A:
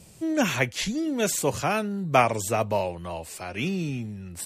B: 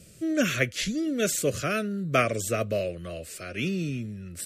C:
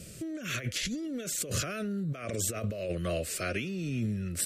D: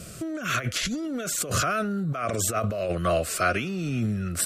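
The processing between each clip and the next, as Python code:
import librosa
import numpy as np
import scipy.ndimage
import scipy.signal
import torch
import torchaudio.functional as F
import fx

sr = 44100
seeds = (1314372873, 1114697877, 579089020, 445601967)

y1 = scipy.signal.sosfilt(scipy.signal.cheby1(2, 1.0, [600.0, 1300.0], 'bandstop', fs=sr, output='sos'), x)
y2 = fx.over_compress(y1, sr, threshold_db=-34.0, ratio=-1.0)
y3 = fx.band_shelf(y2, sr, hz=1000.0, db=11.0, octaves=1.3)
y3 = y3 * librosa.db_to_amplitude(5.0)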